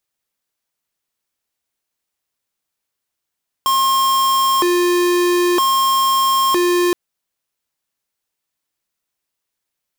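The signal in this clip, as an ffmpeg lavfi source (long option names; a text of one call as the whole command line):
ffmpeg -f lavfi -i "aevalsrc='0.178*(2*lt(mod((711.5*t+358.5/0.52*(0.5-abs(mod(0.52*t,1)-0.5))),1),0.5)-1)':duration=3.27:sample_rate=44100" out.wav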